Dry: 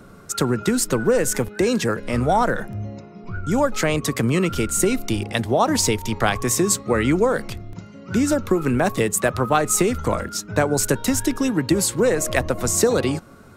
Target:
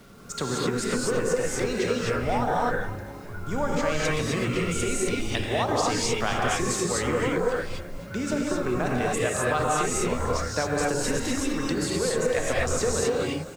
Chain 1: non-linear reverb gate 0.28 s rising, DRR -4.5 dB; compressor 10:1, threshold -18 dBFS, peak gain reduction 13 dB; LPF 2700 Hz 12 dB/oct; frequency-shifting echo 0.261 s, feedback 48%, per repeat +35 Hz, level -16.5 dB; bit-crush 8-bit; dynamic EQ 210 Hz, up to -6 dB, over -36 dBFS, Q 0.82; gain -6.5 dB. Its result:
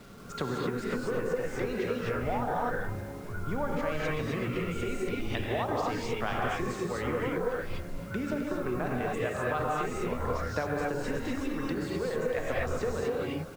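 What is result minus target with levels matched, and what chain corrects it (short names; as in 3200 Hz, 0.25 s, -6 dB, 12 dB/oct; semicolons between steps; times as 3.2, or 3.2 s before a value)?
8000 Hz band -12.5 dB; compressor: peak gain reduction +6 dB
non-linear reverb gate 0.28 s rising, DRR -4.5 dB; compressor 10:1, threshold -11.5 dBFS, peak gain reduction 7 dB; LPF 6800 Hz 12 dB/oct; frequency-shifting echo 0.261 s, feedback 48%, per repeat +35 Hz, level -16.5 dB; bit-crush 8-bit; dynamic EQ 210 Hz, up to -6 dB, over -36 dBFS, Q 0.82; gain -6.5 dB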